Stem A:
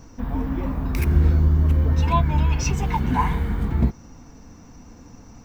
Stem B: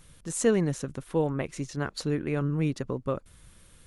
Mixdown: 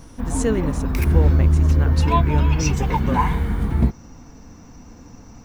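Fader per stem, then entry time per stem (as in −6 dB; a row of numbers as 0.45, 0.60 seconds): +2.0, +1.0 decibels; 0.00, 0.00 seconds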